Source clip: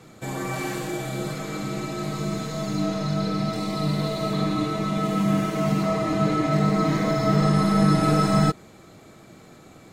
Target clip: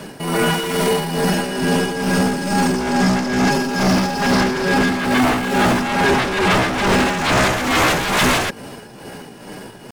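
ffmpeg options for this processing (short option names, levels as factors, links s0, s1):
-af "asetrate=55563,aresample=44100,atempo=0.793701,aeval=exprs='0.422*sin(PI/2*5.62*val(0)/0.422)':c=same,tremolo=f=2.3:d=0.58,volume=0.668"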